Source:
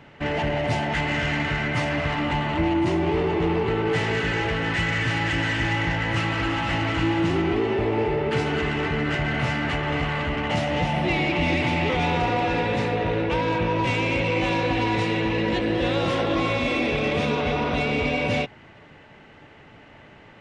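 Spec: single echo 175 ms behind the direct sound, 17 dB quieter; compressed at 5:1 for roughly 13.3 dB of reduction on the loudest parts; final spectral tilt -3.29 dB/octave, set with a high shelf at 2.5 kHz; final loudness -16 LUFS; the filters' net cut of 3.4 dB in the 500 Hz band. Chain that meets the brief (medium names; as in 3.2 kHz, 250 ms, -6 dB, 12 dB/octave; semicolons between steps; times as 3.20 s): peaking EQ 500 Hz -4.5 dB; treble shelf 2.5 kHz +6.5 dB; compression 5:1, threshold -35 dBFS; delay 175 ms -17 dB; trim +19.5 dB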